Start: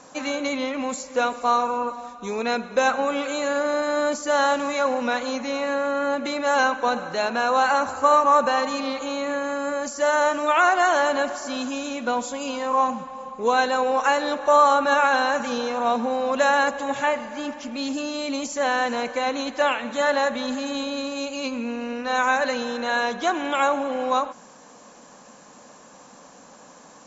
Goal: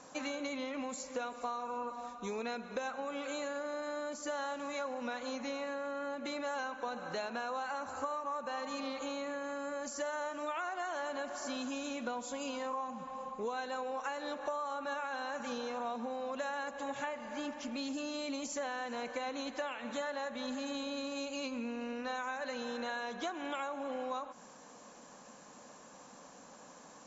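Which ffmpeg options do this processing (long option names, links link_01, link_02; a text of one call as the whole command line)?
ffmpeg -i in.wav -af "acompressor=threshold=-28dB:ratio=10,volume=-7dB" out.wav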